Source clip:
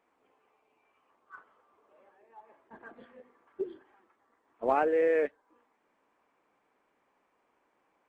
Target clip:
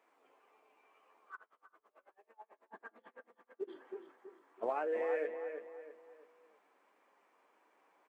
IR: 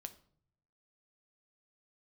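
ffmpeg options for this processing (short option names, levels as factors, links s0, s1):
-filter_complex "[0:a]highpass=340,acompressor=threshold=0.02:ratio=12,flanger=delay=9.2:depth=1.7:regen=54:speed=1.7:shape=sinusoidal,asplit=2[s0][s1];[s1]adelay=327,lowpass=f=2900:p=1,volume=0.447,asplit=2[s2][s3];[s3]adelay=327,lowpass=f=2900:p=1,volume=0.38,asplit=2[s4][s5];[s5]adelay=327,lowpass=f=2900:p=1,volume=0.38,asplit=2[s6][s7];[s7]adelay=327,lowpass=f=2900:p=1,volume=0.38[s8];[s0][s2][s4][s6][s8]amix=inputs=5:normalize=0,asplit=3[s9][s10][s11];[s9]afade=t=out:st=1.35:d=0.02[s12];[s10]aeval=exprs='val(0)*pow(10,-29*(0.5-0.5*cos(2*PI*9.1*n/s))/20)':c=same,afade=t=in:st=1.35:d=0.02,afade=t=out:st=3.67:d=0.02[s13];[s11]afade=t=in:st=3.67:d=0.02[s14];[s12][s13][s14]amix=inputs=3:normalize=0,volume=2"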